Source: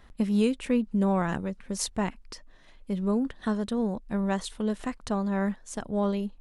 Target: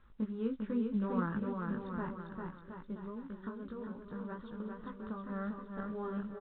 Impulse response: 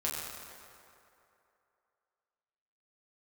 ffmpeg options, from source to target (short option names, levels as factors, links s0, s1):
-filter_complex "[0:a]highshelf=f=1800:t=q:w=3:g=-8.5,flanger=delay=17:depth=2.1:speed=2.5,equalizer=f=710:t=o:w=0.41:g=-15,asettb=1/sr,asplit=3[s0][s1][s2];[s0]atrim=end=3.004[s3];[s1]atrim=start=3:end=5.3,asetpts=PTS-STARTPTS,afade=t=in:d=0.004:c=qsin,afade=t=out:st=2.296:d=0.004:c=qsin,acompressor=threshold=0.0224:ratio=20[s4];[s2]atrim=start=5.296[s5];[s3][s4]acrossfade=d=0.004:c1=hsin:c2=qsin[s6];[s6][s5]acrossfade=d=0.004:c1=qsin:c2=hsin,aecho=1:1:400|720|976|1181|1345:0.631|0.398|0.251|0.158|0.1,volume=0.447" -ar 8000 -c:a pcm_mulaw